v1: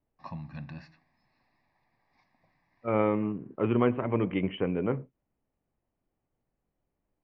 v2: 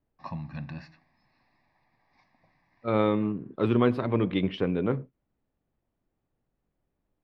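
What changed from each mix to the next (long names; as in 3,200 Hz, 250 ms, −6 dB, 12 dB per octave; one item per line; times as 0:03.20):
first voice +3.5 dB
second voice: remove Chebyshev low-pass with heavy ripple 3,100 Hz, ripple 3 dB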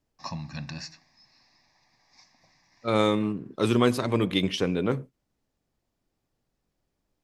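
master: remove high-frequency loss of the air 440 metres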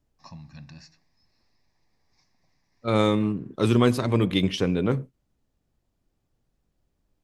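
first voice −11.5 dB
master: add low-shelf EQ 160 Hz +8.5 dB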